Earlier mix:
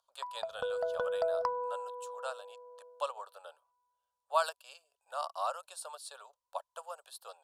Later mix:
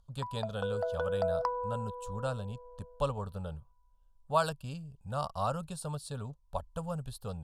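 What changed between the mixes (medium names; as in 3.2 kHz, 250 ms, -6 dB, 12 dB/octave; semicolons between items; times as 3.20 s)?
speech: remove steep high-pass 600 Hz 36 dB/octave; master: add peaking EQ 820 Hz +3 dB 0.29 oct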